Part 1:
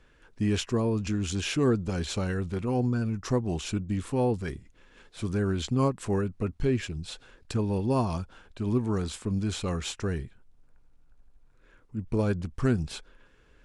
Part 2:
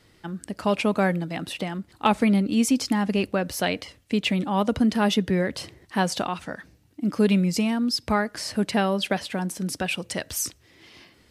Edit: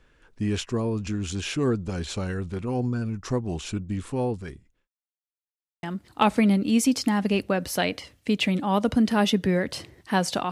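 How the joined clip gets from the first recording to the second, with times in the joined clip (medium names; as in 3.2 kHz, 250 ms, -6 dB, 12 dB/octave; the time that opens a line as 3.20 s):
part 1
3.99–4.88 s: fade out equal-power
4.88–5.83 s: mute
5.83 s: go over to part 2 from 1.67 s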